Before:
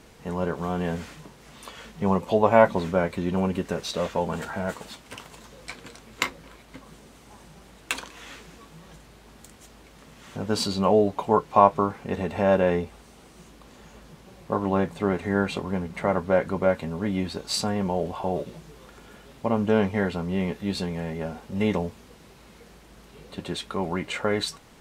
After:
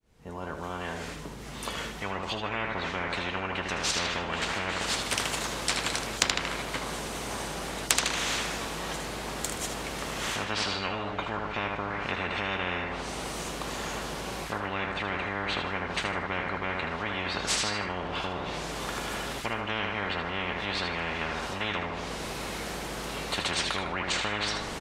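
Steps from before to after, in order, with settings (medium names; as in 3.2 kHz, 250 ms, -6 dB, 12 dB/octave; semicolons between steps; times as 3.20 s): fade-in on the opening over 5.25 s; bass shelf 150 Hz +9 dB; low-pass that closes with the level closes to 2 kHz, closed at -21.5 dBFS; on a send: feedback delay 77 ms, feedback 35%, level -9 dB; on the sum: spectrum-flattening compressor 10:1; trim -1 dB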